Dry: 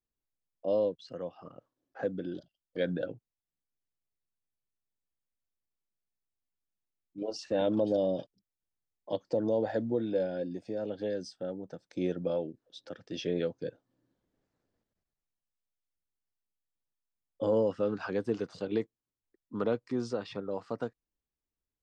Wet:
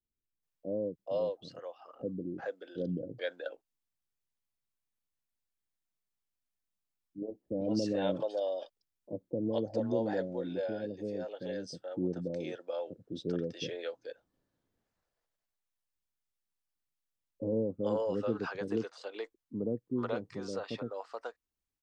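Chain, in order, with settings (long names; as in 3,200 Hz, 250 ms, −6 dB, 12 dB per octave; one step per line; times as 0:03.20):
multiband delay without the direct sound lows, highs 430 ms, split 490 Hz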